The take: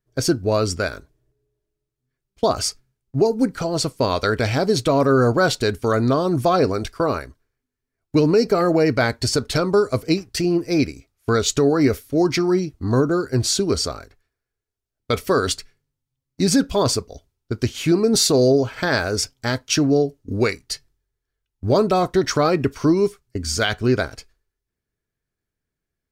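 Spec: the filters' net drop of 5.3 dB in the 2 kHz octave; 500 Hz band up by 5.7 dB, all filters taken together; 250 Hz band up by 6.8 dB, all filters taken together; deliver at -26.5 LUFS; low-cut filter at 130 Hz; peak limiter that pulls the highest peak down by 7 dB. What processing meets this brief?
high-pass 130 Hz; peaking EQ 250 Hz +7.5 dB; peaking EQ 500 Hz +5 dB; peaking EQ 2 kHz -8.5 dB; trim -8.5 dB; peak limiter -15.5 dBFS

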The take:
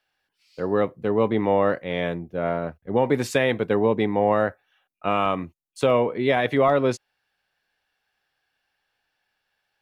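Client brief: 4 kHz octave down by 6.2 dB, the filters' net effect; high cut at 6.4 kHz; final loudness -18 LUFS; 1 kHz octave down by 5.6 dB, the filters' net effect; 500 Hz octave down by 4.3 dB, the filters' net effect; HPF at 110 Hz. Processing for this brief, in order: high-pass 110 Hz; low-pass 6.4 kHz; peaking EQ 500 Hz -3.5 dB; peaking EQ 1 kHz -6 dB; peaking EQ 4 kHz -7.5 dB; trim +9 dB

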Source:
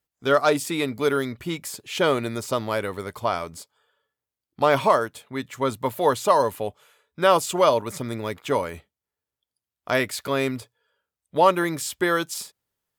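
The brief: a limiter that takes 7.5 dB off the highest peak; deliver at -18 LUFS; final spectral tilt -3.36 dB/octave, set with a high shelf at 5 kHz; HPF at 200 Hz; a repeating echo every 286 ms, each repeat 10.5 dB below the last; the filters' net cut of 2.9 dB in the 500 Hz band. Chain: high-pass 200 Hz; peaking EQ 500 Hz -3.5 dB; treble shelf 5 kHz +5.5 dB; peak limiter -12 dBFS; feedback delay 286 ms, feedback 30%, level -10.5 dB; trim +8.5 dB

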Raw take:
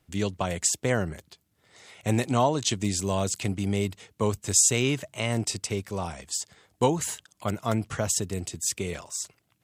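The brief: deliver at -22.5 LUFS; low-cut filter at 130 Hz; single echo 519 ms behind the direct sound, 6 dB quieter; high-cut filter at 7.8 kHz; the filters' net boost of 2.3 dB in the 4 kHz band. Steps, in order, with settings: high-pass 130 Hz; low-pass 7.8 kHz; peaking EQ 4 kHz +3.5 dB; delay 519 ms -6 dB; trim +4.5 dB

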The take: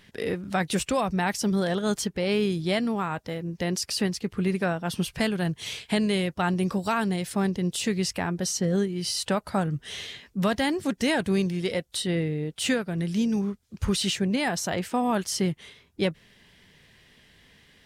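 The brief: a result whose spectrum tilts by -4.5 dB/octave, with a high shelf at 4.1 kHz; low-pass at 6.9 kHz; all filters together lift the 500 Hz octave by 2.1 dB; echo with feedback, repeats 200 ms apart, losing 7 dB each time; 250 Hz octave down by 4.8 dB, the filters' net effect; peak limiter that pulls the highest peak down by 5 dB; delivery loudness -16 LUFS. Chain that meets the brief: low-pass 6.9 kHz; peaking EQ 250 Hz -8.5 dB; peaking EQ 500 Hz +5.5 dB; treble shelf 4.1 kHz -9 dB; peak limiter -18.5 dBFS; feedback delay 200 ms, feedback 45%, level -7 dB; trim +13 dB

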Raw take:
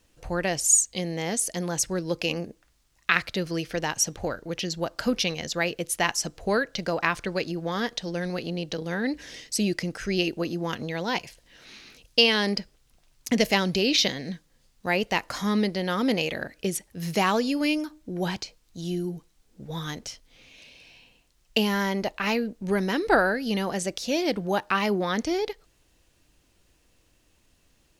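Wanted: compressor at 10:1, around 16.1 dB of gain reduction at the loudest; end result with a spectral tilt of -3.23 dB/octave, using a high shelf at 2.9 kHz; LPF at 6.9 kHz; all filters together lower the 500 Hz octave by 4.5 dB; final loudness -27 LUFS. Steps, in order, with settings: low-pass 6.9 kHz; peaking EQ 500 Hz -6 dB; treble shelf 2.9 kHz +6.5 dB; compression 10:1, threshold -29 dBFS; trim +7 dB

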